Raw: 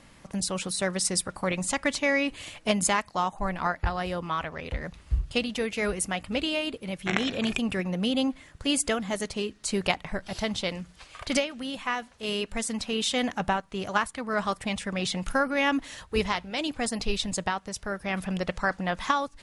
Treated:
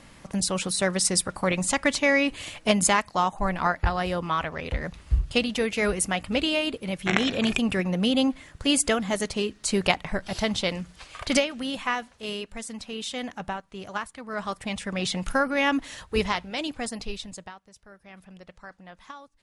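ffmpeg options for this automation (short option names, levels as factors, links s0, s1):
-af "volume=3.55,afade=t=out:st=11.79:d=0.69:silence=0.334965,afade=t=in:st=14.23:d=0.84:silence=0.421697,afade=t=out:st=16.35:d=0.85:silence=0.354813,afade=t=out:st=17.2:d=0.4:silence=0.316228"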